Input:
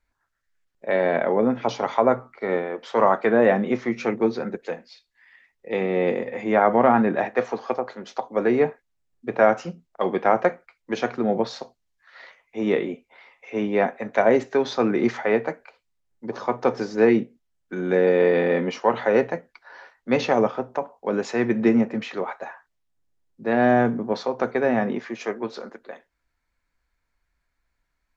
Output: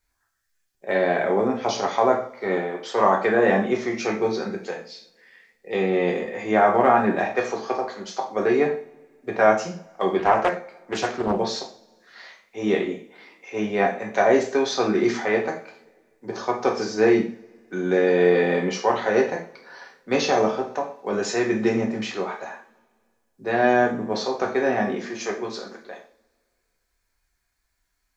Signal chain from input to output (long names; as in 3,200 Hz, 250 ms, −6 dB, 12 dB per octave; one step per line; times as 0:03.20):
bass and treble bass −1 dB, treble +11 dB
coupled-rooms reverb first 0.41 s, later 2 s, from −27 dB, DRR −0.5 dB
0:10.19–0:11.39: highs frequency-modulated by the lows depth 0.54 ms
level −2.5 dB